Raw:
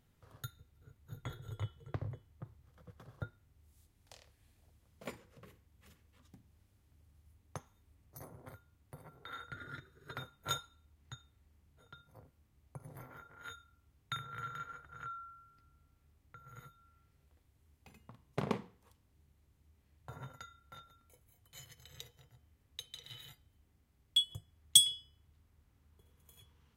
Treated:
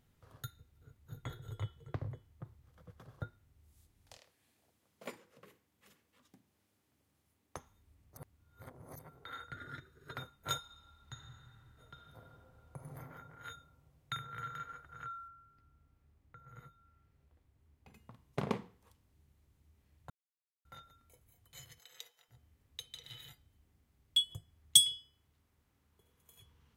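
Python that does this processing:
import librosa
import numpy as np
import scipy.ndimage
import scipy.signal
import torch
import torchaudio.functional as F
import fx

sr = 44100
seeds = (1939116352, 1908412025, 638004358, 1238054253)

y = fx.highpass(x, sr, hz=220.0, slope=12, at=(4.17, 7.57))
y = fx.reverb_throw(y, sr, start_s=10.58, length_s=2.32, rt60_s=2.9, drr_db=0.0)
y = fx.high_shelf(y, sr, hz=3000.0, db=-9.5, at=(15.28, 17.94))
y = fx.highpass(y, sr, hz=fx.line((21.78, 430.0), (22.28, 900.0)), slope=12, at=(21.78, 22.28), fade=0.02)
y = fx.low_shelf(y, sr, hz=130.0, db=-11.0, at=(24.97, 26.4))
y = fx.edit(y, sr, fx.reverse_span(start_s=8.17, length_s=0.82),
    fx.silence(start_s=20.1, length_s=0.55), tone=tone)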